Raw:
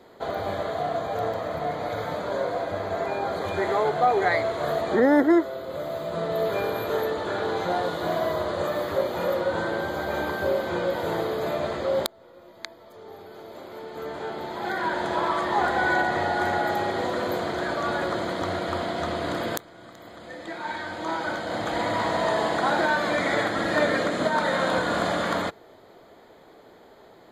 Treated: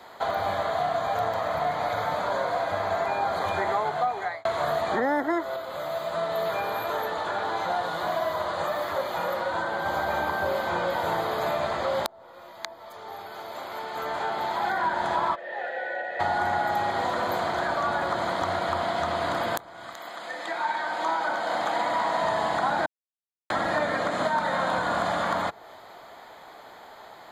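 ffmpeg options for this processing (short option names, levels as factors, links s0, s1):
-filter_complex "[0:a]asettb=1/sr,asplit=3[s0][s1][s2];[s0]atrim=end=5.564[s3];[s1]atrim=start=5.56:end=9.86,asetpts=PTS-STARTPTS,afade=t=in:d=0.004:c=qsin,afade=t=out:st=4.296:d=0.004:c=qsin,flanger=delay=2.9:depth=3.5:regen=69:speed=1.5:shape=sinusoidal[s4];[s2]atrim=start=9.856[s5];[s3][s4]acrossfade=d=0.004:c1=hsin:c2=qsin[s6];[s6][s5]acrossfade=d=0.004:c1=qsin:c2=hsin,asplit=3[s7][s8][s9];[s7]afade=t=out:st=15.34:d=0.02[s10];[s8]asplit=3[s11][s12][s13];[s11]bandpass=f=530:t=q:w=8,volume=1[s14];[s12]bandpass=f=1840:t=q:w=8,volume=0.501[s15];[s13]bandpass=f=2480:t=q:w=8,volume=0.355[s16];[s14][s15][s16]amix=inputs=3:normalize=0,afade=t=in:st=15.34:d=0.02,afade=t=out:st=16.19:d=0.02[s17];[s9]afade=t=in:st=16.19:d=0.02[s18];[s10][s17][s18]amix=inputs=3:normalize=0,asettb=1/sr,asplit=3[s19][s20][s21];[s19]atrim=end=19.944[s22];[s20]atrim=start=19.94:end=22.22,asetpts=PTS-STARTPTS,afade=t=in:d=0.004:c=qsin,afade=t=out:st=2.276:d=0.004:c=qsin,highpass=230[s23];[s21]atrim=start=22.216[s24];[s22][s23]acrossfade=d=0.004:c1=hsin:c2=qsin[s25];[s25][s24]acrossfade=d=0.004:c1=qsin:c2=hsin,asplit=4[s26][s27][s28][s29];[s26]atrim=end=4.45,asetpts=PTS-STARTPTS,afade=t=out:st=3.7:d=0.75[s30];[s27]atrim=start=4.45:end=22.86,asetpts=PTS-STARTPTS,afade=t=in:d=0.004:c=hsin,afade=t=out:st=18.406:d=0.004:c=hsin[s31];[s28]atrim=start=22.86:end=23.5,asetpts=PTS-STARTPTS,volume=0[s32];[s29]atrim=start=23.5,asetpts=PTS-STARTPTS,afade=t=in:d=0.004:c=hsin[s33];[s30][s31][s32][s33]concat=n=4:v=0:a=1,lowshelf=f=590:t=q:w=1.5:g=-9.5,acrossover=split=300|1100[s34][s35][s36];[s34]acompressor=threshold=0.00891:ratio=4[s37];[s35]acompressor=threshold=0.02:ratio=4[s38];[s36]acompressor=threshold=0.00794:ratio=4[s39];[s37][s38][s39]amix=inputs=3:normalize=0,volume=2.37"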